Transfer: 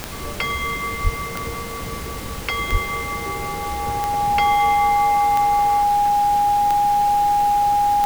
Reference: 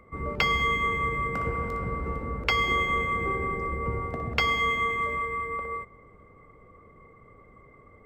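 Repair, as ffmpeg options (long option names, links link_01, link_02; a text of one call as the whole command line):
ffmpeg -i in.wav -filter_complex "[0:a]adeclick=threshold=4,bandreject=frequency=820:width=30,asplit=3[link_01][link_02][link_03];[link_01]afade=type=out:start_time=1.03:duration=0.02[link_04];[link_02]highpass=frequency=140:width=0.5412,highpass=frequency=140:width=1.3066,afade=type=in:start_time=1.03:duration=0.02,afade=type=out:start_time=1.15:duration=0.02[link_05];[link_03]afade=type=in:start_time=1.15:duration=0.02[link_06];[link_04][link_05][link_06]amix=inputs=3:normalize=0,asplit=3[link_07][link_08][link_09];[link_07]afade=type=out:start_time=2.71:duration=0.02[link_10];[link_08]highpass=frequency=140:width=0.5412,highpass=frequency=140:width=1.3066,afade=type=in:start_time=2.71:duration=0.02,afade=type=out:start_time=2.83:duration=0.02[link_11];[link_09]afade=type=in:start_time=2.83:duration=0.02[link_12];[link_10][link_11][link_12]amix=inputs=3:normalize=0,afftdn=noise_reduction=24:noise_floor=-29" out.wav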